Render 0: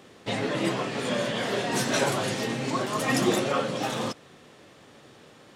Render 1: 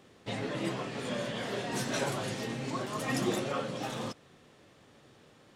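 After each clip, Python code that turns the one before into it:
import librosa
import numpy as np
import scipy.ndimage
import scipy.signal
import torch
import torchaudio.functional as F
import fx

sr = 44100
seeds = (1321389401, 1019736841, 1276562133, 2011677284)

y = fx.low_shelf(x, sr, hz=110.0, db=8.0)
y = F.gain(torch.from_numpy(y), -8.0).numpy()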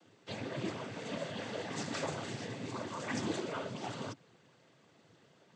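y = fx.noise_vocoder(x, sr, seeds[0], bands=16)
y = F.gain(torch.from_numpy(y), -4.5).numpy()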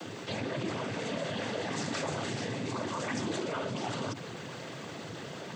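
y = fx.env_flatten(x, sr, amount_pct=70)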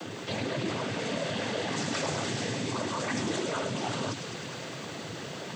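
y = fx.echo_wet_highpass(x, sr, ms=103, feedback_pct=82, hz=2600.0, wet_db=-5)
y = F.gain(torch.from_numpy(y), 2.5).numpy()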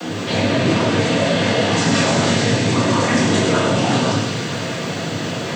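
y = fx.room_shoebox(x, sr, seeds[1], volume_m3=250.0, walls='mixed', distance_m=1.8)
y = F.gain(torch.from_numpy(y), 8.5).numpy()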